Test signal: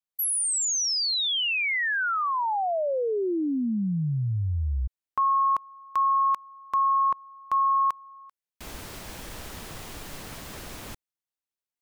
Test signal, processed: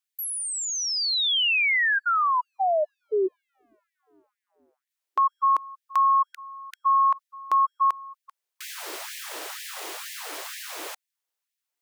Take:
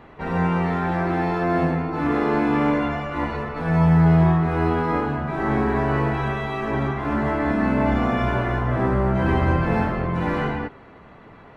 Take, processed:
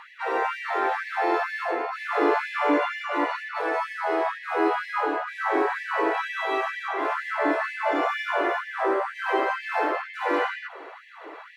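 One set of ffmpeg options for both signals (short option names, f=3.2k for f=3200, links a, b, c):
-filter_complex "[0:a]acrossover=split=3800[a][b];[b]acompressor=threshold=-39dB:ratio=4:attack=1:release=60[c];[a][c]amix=inputs=2:normalize=0,equalizer=f=77:w=1:g=9.5,asplit=2[d][e];[e]acompressor=threshold=-31dB:ratio=6:attack=0.78:release=68:knee=6:detection=peak,volume=2dB[f];[d][f]amix=inputs=2:normalize=0,afftfilt=real='re*gte(b*sr/1024,270*pow(1700/270,0.5+0.5*sin(2*PI*2.1*pts/sr)))':imag='im*gte(b*sr/1024,270*pow(1700/270,0.5+0.5*sin(2*PI*2.1*pts/sr)))':win_size=1024:overlap=0.75"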